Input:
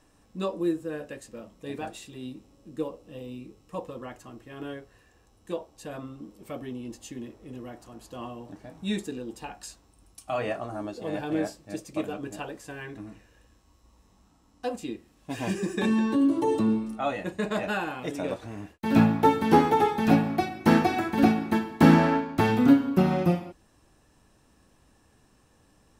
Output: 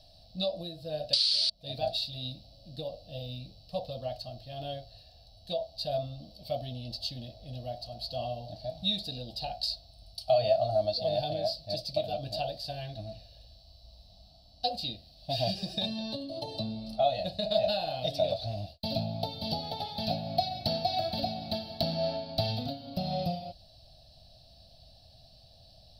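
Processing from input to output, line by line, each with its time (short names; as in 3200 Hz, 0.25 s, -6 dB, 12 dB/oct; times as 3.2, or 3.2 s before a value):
1.13–1.5 painted sound noise 1200–9800 Hz -25 dBFS
18.54–19.63 bell 1700 Hz -9 dB 0.69 oct
whole clip: high shelf 3200 Hz +11.5 dB; compressor 10:1, threshold -28 dBFS; EQ curve 130 Hz 0 dB, 400 Hz -26 dB, 660 Hz +8 dB, 1000 Hz -25 dB, 2000 Hz -24 dB, 4500 Hz +10 dB, 6800 Hz -30 dB, 13000 Hz -17 dB; gain +6.5 dB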